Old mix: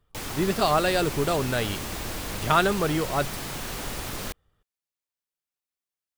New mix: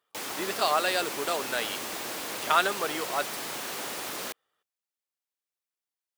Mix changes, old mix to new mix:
speech: add low-shelf EQ 470 Hz −11.5 dB
master: add high-pass filter 330 Hz 12 dB per octave

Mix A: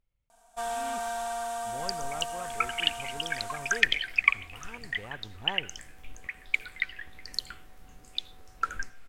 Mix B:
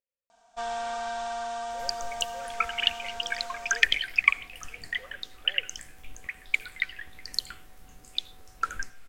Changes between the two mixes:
speech: add formant filter e
first sound: add low-pass filter 5,800 Hz 24 dB per octave
master: add high-shelf EQ 3,900 Hz +5.5 dB

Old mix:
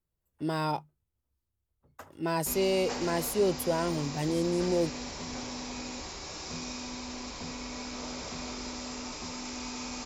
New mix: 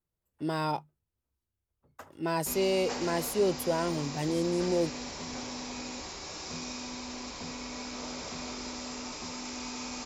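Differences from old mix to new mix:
speech: add high-shelf EQ 9,500 Hz −3 dB
master: add low-shelf EQ 90 Hz −6 dB

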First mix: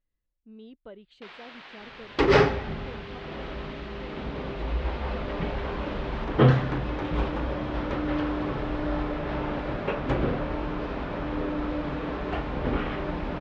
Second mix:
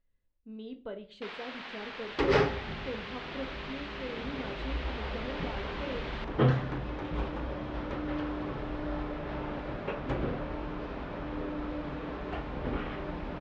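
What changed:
first sound +3.0 dB
second sound −6.5 dB
reverb: on, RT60 0.45 s

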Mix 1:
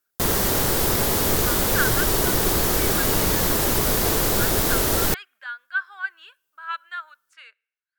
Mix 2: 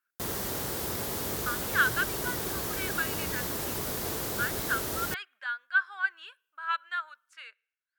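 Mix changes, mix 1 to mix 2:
background −12.0 dB
master: add high-pass filter 62 Hz

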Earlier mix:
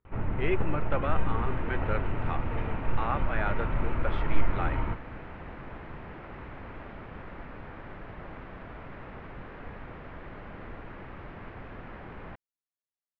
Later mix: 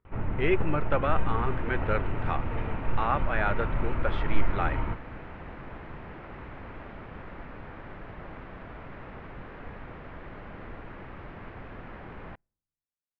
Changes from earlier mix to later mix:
speech +4.0 dB
second sound: send on

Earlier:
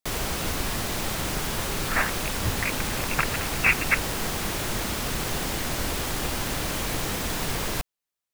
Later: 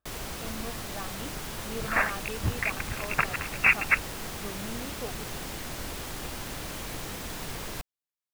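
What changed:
speech: unmuted
first sound −8.5 dB

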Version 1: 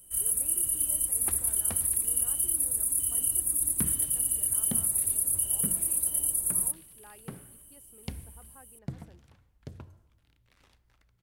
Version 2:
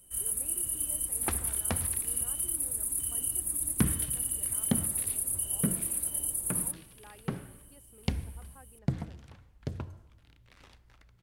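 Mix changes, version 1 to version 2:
second sound +7.5 dB
master: add high-shelf EQ 9,600 Hz −8 dB

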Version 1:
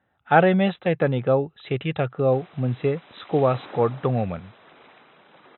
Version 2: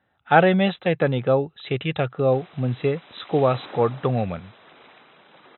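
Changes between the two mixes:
speech: remove high-frequency loss of the air 67 metres
master: remove high-frequency loss of the air 150 metres

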